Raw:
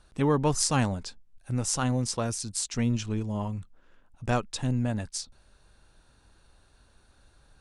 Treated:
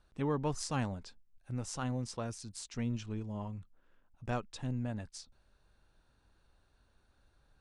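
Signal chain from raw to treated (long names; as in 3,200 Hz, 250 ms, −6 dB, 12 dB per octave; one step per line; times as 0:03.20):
high-shelf EQ 7,000 Hz −11.5 dB
level −9 dB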